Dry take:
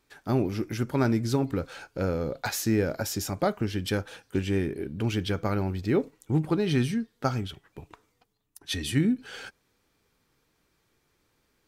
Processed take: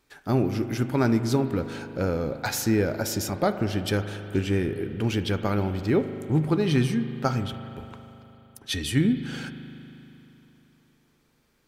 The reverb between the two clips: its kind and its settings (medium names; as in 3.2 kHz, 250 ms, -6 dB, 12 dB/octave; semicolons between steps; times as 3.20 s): spring tank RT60 3.3 s, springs 39 ms, chirp 40 ms, DRR 9.5 dB; trim +2 dB